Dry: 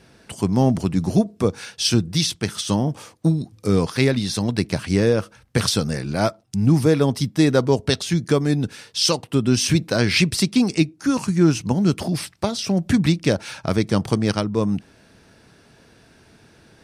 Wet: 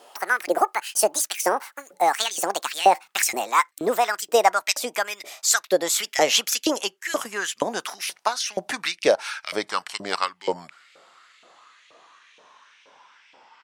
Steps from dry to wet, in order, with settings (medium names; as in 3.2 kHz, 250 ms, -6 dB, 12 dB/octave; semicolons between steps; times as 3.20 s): gliding tape speed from 192% -> 55%; LFO high-pass saw up 2.1 Hz 510–2600 Hz